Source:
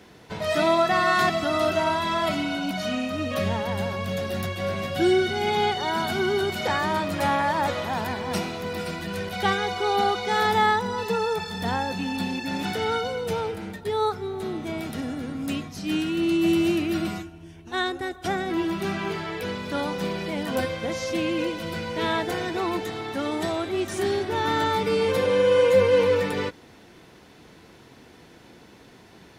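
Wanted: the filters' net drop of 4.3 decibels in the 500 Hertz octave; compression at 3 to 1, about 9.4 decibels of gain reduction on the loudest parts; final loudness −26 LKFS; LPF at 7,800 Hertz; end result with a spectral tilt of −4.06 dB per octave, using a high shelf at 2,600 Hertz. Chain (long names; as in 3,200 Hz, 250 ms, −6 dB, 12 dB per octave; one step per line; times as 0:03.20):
low-pass filter 7,800 Hz
parametric band 500 Hz −5 dB
high-shelf EQ 2,600 Hz −5.5 dB
downward compressor 3 to 1, threshold −32 dBFS
level +8 dB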